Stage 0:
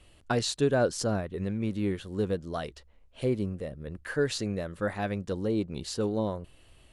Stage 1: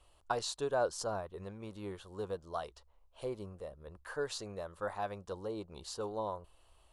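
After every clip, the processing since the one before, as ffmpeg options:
ffmpeg -i in.wav -af "equalizer=frequency=125:width_type=o:width=1:gain=-9,equalizer=frequency=250:width_type=o:width=1:gain=-11,equalizer=frequency=1000:width_type=o:width=1:gain=10,equalizer=frequency=2000:width_type=o:width=1:gain=-9,volume=-6.5dB" out.wav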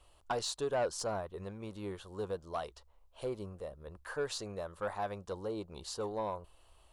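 ffmpeg -i in.wav -af "asoftclip=type=tanh:threshold=-27.5dB,volume=2dB" out.wav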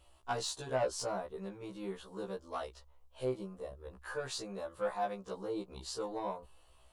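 ffmpeg -i in.wav -af "afftfilt=real='re*1.73*eq(mod(b,3),0)':imag='im*1.73*eq(mod(b,3),0)':win_size=2048:overlap=0.75,volume=2dB" out.wav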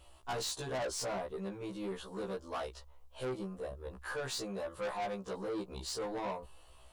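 ffmpeg -i in.wav -af "asoftclip=type=tanh:threshold=-38.5dB,volume=5dB" out.wav

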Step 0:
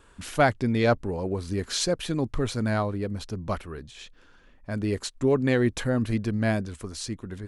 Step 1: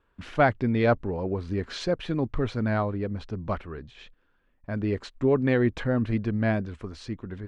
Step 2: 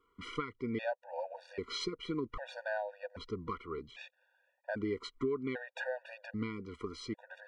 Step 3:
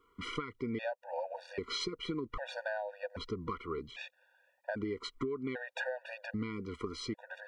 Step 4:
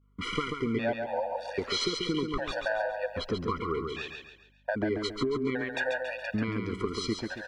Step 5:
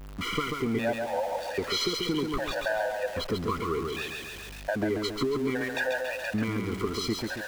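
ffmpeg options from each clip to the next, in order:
ffmpeg -i in.wav -af "lowpass=2800,agate=range=-13dB:threshold=-50dB:ratio=16:detection=peak" out.wav
ffmpeg -i in.wav -af "bass=frequency=250:gain=-15,treble=frequency=4000:gain=-3,acompressor=threshold=-34dB:ratio=5,afftfilt=real='re*gt(sin(2*PI*0.63*pts/sr)*(1-2*mod(floor(b*sr/1024/480),2)),0)':imag='im*gt(sin(2*PI*0.63*pts/sr)*(1-2*mod(floor(b*sr/1024/480),2)),0)':win_size=1024:overlap=0.75,volume=2.5dB" out.wav
ffmpeg -i in.wav -af "acompressor=threshold=-38dB:ratio=5,volume=4.5dB" out.wav
ffmpeg -i in.wav -af "agate=range=-33dB:threshold=-57dB:ratio=3:detection=peak,aecho=1:1:138|276|414|552|690:0.562|0.219|0.0855|0.0334|0.013,aeval=exprs='val(0)+0.000316*(sin(2*PI*50*n/s)+sin(2*PI*2*50*n/s)/2+sin(2*PI*3*50*n/s)/3+sin(2*PI*4*50*n/s)/4+sin(2*PI*5*50*n/s)/5)':channel_layout=same,volume=6.5dB" out.wav
ffmpeg -i in.wav -af "aeval=exprs='val(0)+0.5*0.015*sgn(val(0))':channel_layout=same" out.wav

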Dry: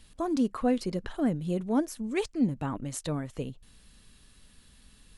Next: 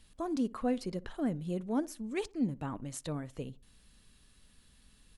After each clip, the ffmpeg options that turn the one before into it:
ffmpeg -i in.wav -filter_complex "[0:a]asplit=2[link_01][link_02];[link_02]adelay=61,lowpass=frequency=1300:poles=1,volume=-20.5dB,asplit=2[link_03][link_04];[link_04]adelay=61,lowpass=frequency=1300:poles=1,volume=0.33,asplit=2[link_05][link_06];[link_06]adelay=61,lowpass=frequency=1300:poles=1,volume=0.33[link_07];[link_01][link_03][link_05][link_07]amix=inputs=4:normalize=0,volume=-5.5dB" out.wav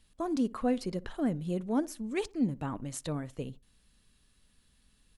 ffmpeg -i in.wav -af "agate=range=-7dB:threshold=-49dB:ratio=16:detection=peak,volume=2.5dB" out.wav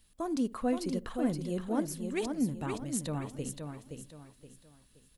ffmpeg -i in.wav -af "highshelf=frequency=9700:gain=12,aecho=1:1:522|1044|1566|2088:0.501|0.17|0.0579|0.0197,volume=-1.5dB" out.wav

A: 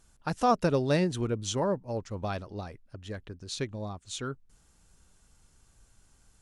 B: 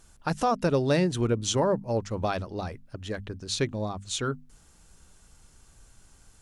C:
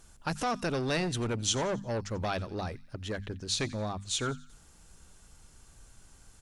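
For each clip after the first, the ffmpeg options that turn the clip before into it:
ffmpeg -i in.wav -af "bandreject=frequency=50:width_type=h:width=6,bandreject=frequency=100:width_type=h:width=6,bandreject=frequency=150:width_type=h:width=6,bandreject=frequency=200:width_type=h:width=6,bandreject=frequency=250:width_type=h:width=6,alimiter=limit=-21.5dB:level=0:latency=1:release=372,volume=6.5dB" out.wav
ffmpeg -i in.wav -filter_complex "[0:a]acrossover=split=1500[link_01][link_02];[link_01]asoftclip=type=tanh:threshold=-28.5dB[link_03];[link_02]aecho=1:1:89|178|267|356:0.126|0.0604|0.029|0.0139[link_04];[link_03][link_04]amix=inputs=2:normalize=0" out.wav

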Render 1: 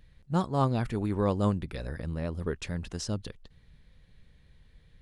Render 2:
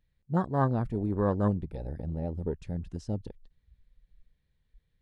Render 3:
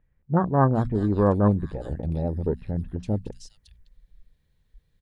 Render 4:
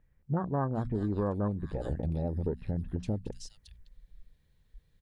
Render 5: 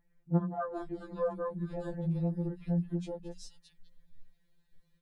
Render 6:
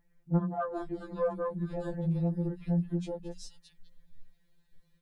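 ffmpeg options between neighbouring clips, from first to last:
ffmpeg -i in.wav -af "afwtdn=0.0224" out.wav
ffmpeg -i in.wav -filter_complex "[0:a]bandreject=frequency=60:width_type=h:width=6,bandreject=frequency=120:width_type=h:width=6,bandreject=frequency=180:width_type=h:width=6,bandreject=frequency=240:width_type=h:width=6,acrossover=split=2300[link_01][link_02];[link_02]adelay=410[link_03];[link_01][link_03]amix=inputs=2:normalize=0,volume=7dB" out.wav
ffmpeg -i in.wav -af "acompressor=threshold=-28dB:ratio=5" out.wav
ffmpeg -i in.wav -af "afftfilt=real='re*2.83*eq(mod(b,8),0)':imag='im*2.83*eq(mod(b,8),0)':win_size=2048:overlap=0.75" out.wav
ffmpeg -i in.wav -af "asoftclip=type=tanh:threshold=-19dB,volume=2.5dB" out.wav

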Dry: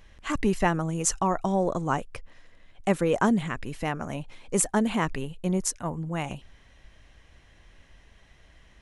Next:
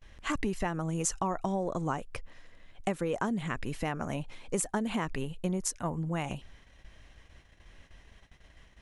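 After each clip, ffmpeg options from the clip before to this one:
ffmpeg -i in.wav -af "agate=range=-25dB:threshold=-54dB:ratio=16:detection=peak,acompressor=threshold=-27dB:ratio=12" out.wav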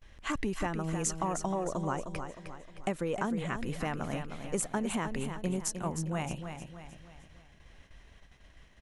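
ffmpeg -i in.wav -af "aecho=1:1:309|618|927|1236|1545:0.398|0.175|0.0771|0.0339|0.0149,volume=-1.5dB" out.wav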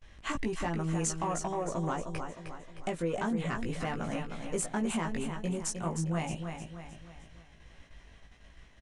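ffmpeg -i in.wav -filter_complex "[0:a]asoftclip=type=tanh:threshold=-24.5dB,asplit=2[link_01][link_02];[link_02]adelay=18,volume=-4dB[link_03];[link_01][link_03]amix=inputs=2:normalize=0,aresample=22050,aresample=44100" out.wav

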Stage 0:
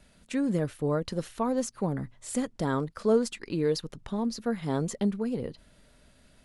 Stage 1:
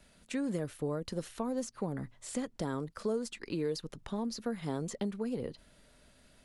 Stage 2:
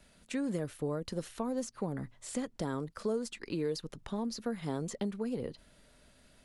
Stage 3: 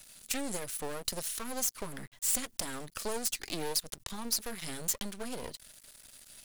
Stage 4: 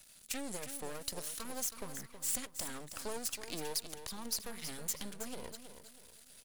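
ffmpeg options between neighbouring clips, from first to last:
ffmpeg -i in.wav -filter_complex "[0:a]bass=frequency=250:gain=-3,treble=frequency=4000:gain=1,acrossover=split=440|6600[link_01][link_02][link_03];[link_01]acompressor=threshold=-32dB:ratio=4[link_04];[link_02]acompressor=threshold=-38dB:ratio=4[link_05];[link_03]acompressor=threshold=-48dB:ratio=4[link_06];[link_04][link_05][link_06]amix=inputs=3:normalize=0,volume=-1.5dB" out.wav
ffmpeg -i in.wav -af anull out.wav
ffmpeg -i in.wav -af "aeval=exprs='max(val(0),0)':channel_layout=same,crystalizer=i=8:c=0" out.wav
ffmpeg -i in.wav -af "aecho=1:1:321|642|963|1284:0.316|0.114|0.041|0.0148,volume=-5.5dB" out.wav

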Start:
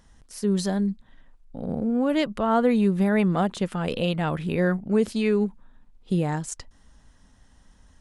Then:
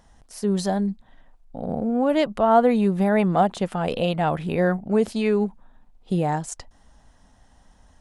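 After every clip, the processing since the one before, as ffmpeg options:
ffmpeg -i in.wav -af "equalizer=frequency=730:width_type=o:width=0.76:gain=9" out.wav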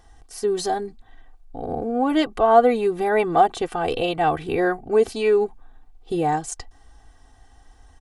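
ffmpeg -i in.wav -af "aecho=1:1:2.6:0.87" out.wav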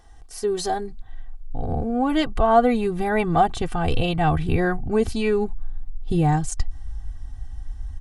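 ffmpeg -i in.wav -af "asubboost=boost=10.5:cutoff=140" out.wav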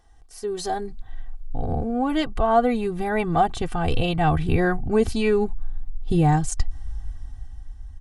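ffmpeg -i in.wav -af "dynaudnorm=framelen=130:gausssize=13:maxgain=11dB,volume=-6.5dB" out.wav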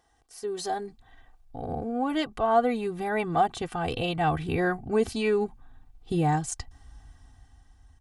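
ffmpeg -i in.wav -af "highpass=frequency=220:poles=1,volume=-3dB" out.wav

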